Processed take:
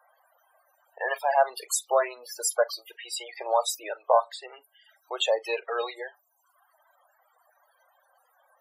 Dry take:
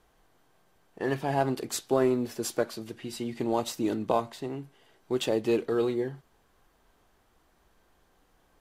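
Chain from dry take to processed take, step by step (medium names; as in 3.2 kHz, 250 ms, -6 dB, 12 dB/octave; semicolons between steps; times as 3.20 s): elliptic high-pass 560 Hz, stop band 70 dB; reverb removal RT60 0.99 s; treble shelf 7.6 kHz +11 dB; in parallel at -9 dB: saturation -32 dBFS, distortion -7 dB; on the sum: loudest bins only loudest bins 32; on a send at -19.5 dB: reverberation, pre-delay 33 ms; on the sum: trim +6.5 dB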